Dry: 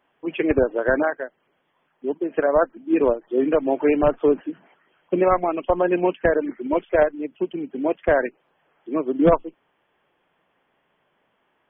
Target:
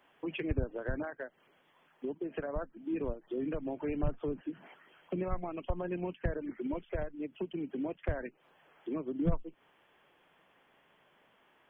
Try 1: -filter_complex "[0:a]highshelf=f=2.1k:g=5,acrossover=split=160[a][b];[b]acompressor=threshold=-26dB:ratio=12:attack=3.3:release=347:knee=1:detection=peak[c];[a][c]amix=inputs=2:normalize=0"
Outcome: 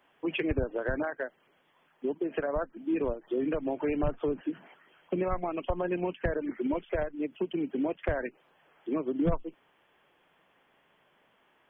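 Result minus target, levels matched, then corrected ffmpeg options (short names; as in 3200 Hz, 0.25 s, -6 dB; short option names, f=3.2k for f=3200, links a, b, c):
compressor: peak gain reduction -7.5 dB
-filter_complex "[0:a]highshelf=f=2.1k:g=5,acrossover=split=160[a][b];[b]acompressor=threshold=-34dB:ratio=12:attack=3.3:release=347:knee=1:detection=peak[c];[a][c]amix=inputs=2:normalize=0"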